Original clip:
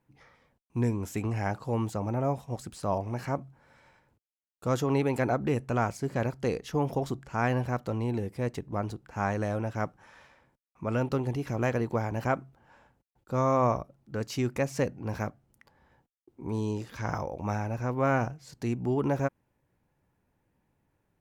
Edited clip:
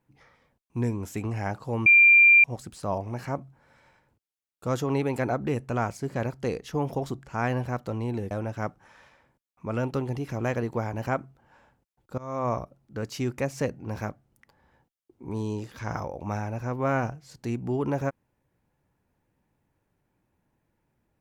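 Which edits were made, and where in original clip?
0:01.86–0:02.44: beep over 2,380 Hz −12 dBFS
0:08.31–0:09.49: remove
0:13.36–0:13.78: fade in, from −23 dB

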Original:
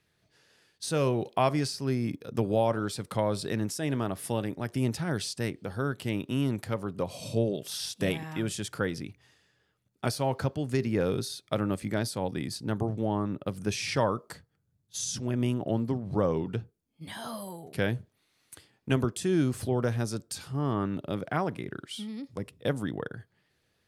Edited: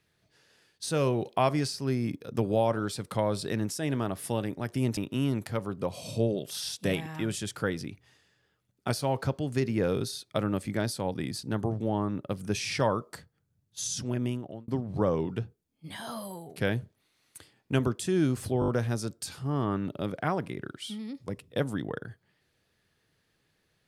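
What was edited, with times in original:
0:04.97–0:06.14: remove
0:15.28–0:15.85: fade out
0:19.77: stutter 0.02 s, 5 plays

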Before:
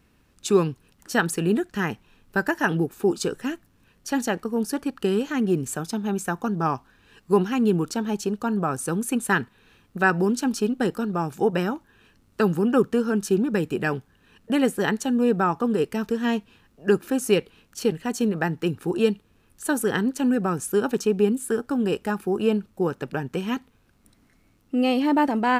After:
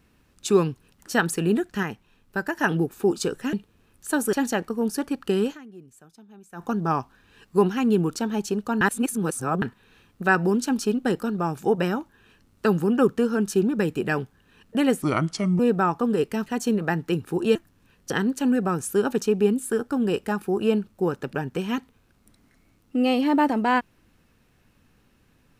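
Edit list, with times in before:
0:01.83–0:02.57: clip gain −4 dB
0:03.53–0:04.08: swap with 0:19.09–0:19.89
0:05.26–0:06.37: duck −22.5 dB, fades 0.36 s exponential
0:08.56–0:09.37: reverse
0:14.77–0:15.20: play speed 75%
0:16.07–0:18.00: remove

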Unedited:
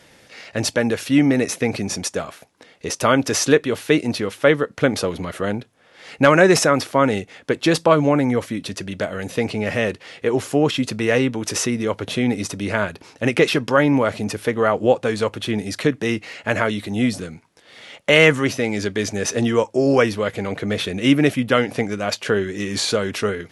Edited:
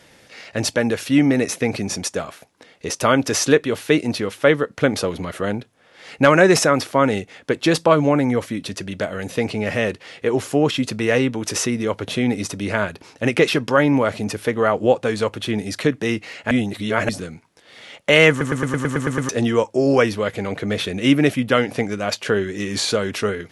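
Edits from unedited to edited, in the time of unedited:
0:16.51–0:17.09: reverse
0:18.30: stutter in place 0.11 s, 9 plays

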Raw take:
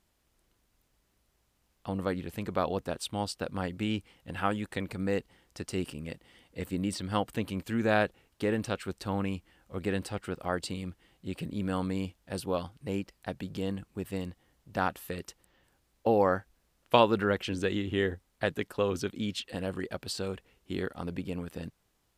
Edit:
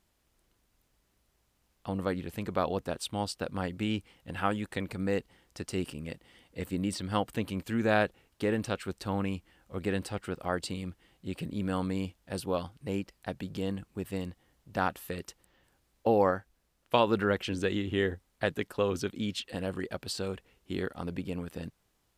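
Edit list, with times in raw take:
0:16.31–0:17.07: clip gain −3 dB

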